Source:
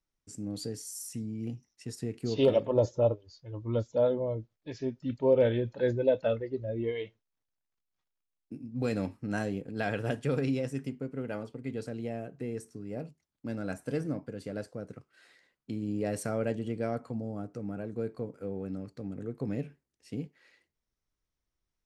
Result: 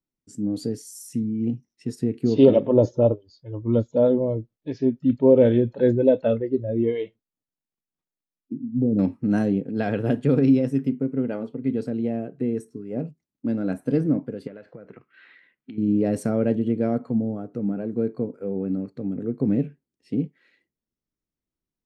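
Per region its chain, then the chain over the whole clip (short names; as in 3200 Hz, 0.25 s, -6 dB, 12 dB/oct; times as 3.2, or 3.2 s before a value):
8.53–8.99 CVSD 64 kbps + Gaussian blur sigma 16 samples
14.47–15.78 LPF 3100 Hz + bell 2300 Hz +11 dB 1.9 oct + compressor 16:1, threshold -42 dBFS
whole clip: spectral noise reduction 9 dB; bell 240 Hz +14.5 dB 2.2 oct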